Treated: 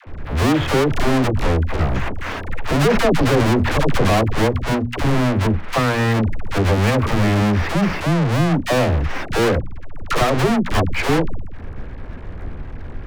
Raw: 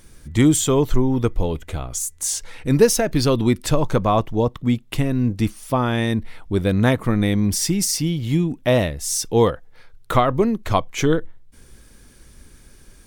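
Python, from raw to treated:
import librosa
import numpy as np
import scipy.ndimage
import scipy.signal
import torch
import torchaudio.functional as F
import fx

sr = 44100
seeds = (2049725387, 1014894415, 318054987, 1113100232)

y = fx.halfwave_hold(x, sr)
y = scipy.signal.sosfilt(scipy.signal.butter(4, 2200.0, 'lowpass', fs=sr, output='sos'), y)
y = fx.peak_eq(y, sr, hz=85.0, db=8.0, octaves=0.4)
y = np.clip(y, -10.0 ** (-14.5 / 20.0), 10.0 ** (-14.5 / 20.0))
y = fx.leveller(y, sr, passes=3)
y = fx.hum_notches(y, sr, base_hz=60, count=4)
y = fx.dispersion(y, sr, late='lows', ms=72.0, hz=540.0)
y = fx.sustainer(y, sr, db_per_s=25.0, at=(1.91, 4.23), fade=0.02)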